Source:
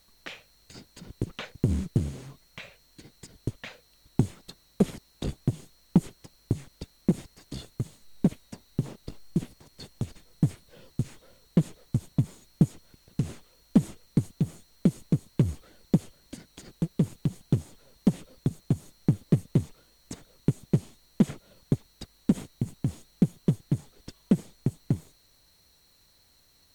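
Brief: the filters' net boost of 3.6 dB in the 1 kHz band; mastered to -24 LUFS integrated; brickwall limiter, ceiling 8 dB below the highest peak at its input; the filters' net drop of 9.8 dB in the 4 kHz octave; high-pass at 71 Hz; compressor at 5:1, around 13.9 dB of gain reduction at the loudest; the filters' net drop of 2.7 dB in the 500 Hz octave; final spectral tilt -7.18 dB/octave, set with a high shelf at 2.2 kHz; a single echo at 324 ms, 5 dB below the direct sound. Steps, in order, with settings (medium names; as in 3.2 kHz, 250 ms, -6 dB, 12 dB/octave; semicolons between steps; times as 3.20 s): high-pass 71 Hz; peaking EQ 500 Hz -5 dB; peaking EQ 1 kHz +8 dB; treble shelf 2.2 kHz -5 dB; peaking EQ 4 kHz -8.5 dB; compression 5:1, threshold -33 dBFS; peak limiter -24.5 dBFS; delay 324 ms -5 dB; trim +20 dB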